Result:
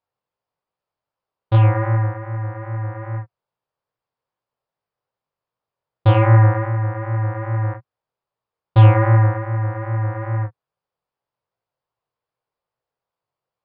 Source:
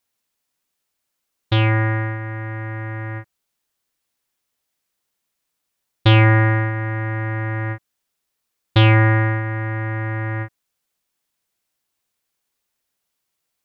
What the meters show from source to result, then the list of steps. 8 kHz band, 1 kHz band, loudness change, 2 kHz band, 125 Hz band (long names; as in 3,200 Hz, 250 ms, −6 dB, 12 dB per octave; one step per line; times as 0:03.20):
can't be measured, +1.0 dB, +1.0 dB, −8.5 dB, +2.5 dB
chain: octave-band graphic EQ 125/250/500/1,000/2,000/4,000 Hz +11/−6/+9/+8/−4/−8 dB
chorus effect 2.5 Hz, delay 17 ms, depth 7.1 ms
downsampling to 11,025 Hz
level −3.5 dB